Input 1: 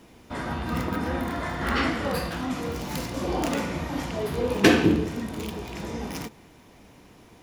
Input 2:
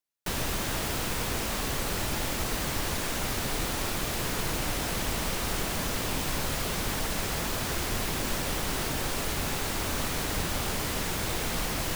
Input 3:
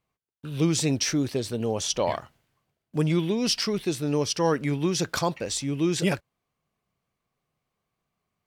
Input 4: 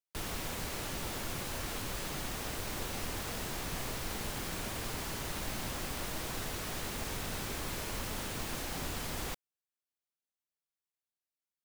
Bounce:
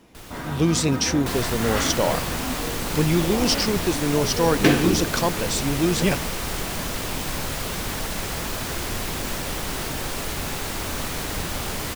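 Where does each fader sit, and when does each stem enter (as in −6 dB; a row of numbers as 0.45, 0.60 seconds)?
−1.5, +2.0, +3.0, −3.5 decibels; 0.00, 1.00, 0.00, 0.00 seconds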